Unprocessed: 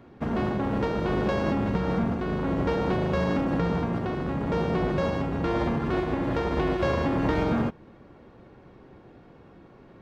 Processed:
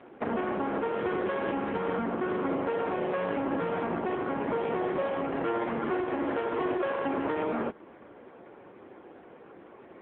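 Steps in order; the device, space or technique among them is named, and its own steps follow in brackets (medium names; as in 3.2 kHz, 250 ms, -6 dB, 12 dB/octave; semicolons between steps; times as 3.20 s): 0.81–2.47 s: dynamic bell 620 Hz, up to -5 dB, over -49 dBFS, Q 6.7; voicemail (band-pass 340–3100 Hz; compression 8:1, threshold -31 dBFS, peak gain reduction 9 dB; trim +6.5 dB; AMR-NB 6.7 kbps 8 kHz)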